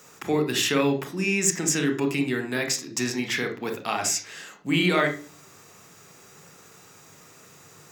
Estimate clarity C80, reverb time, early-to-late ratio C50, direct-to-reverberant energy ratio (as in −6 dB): 16.5 dB, 0.40 s, 10.5 dB, 5.5 dB